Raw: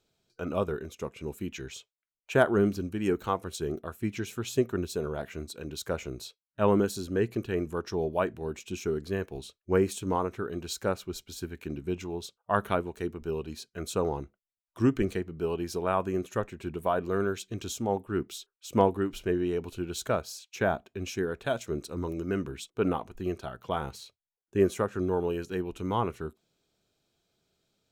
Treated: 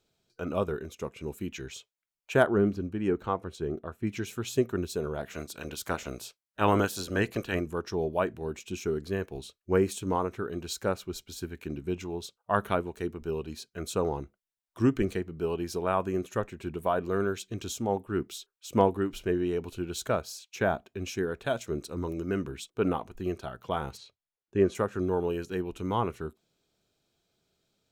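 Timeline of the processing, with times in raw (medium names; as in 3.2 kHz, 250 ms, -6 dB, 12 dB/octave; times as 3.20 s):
2.46–4.07 s: low-pass 1.8 kHz 6 dB/octave
5.29–7.59 s: spectral peaks clipped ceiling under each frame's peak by 16 dB
23.97–24.75 s: distance through air 88 m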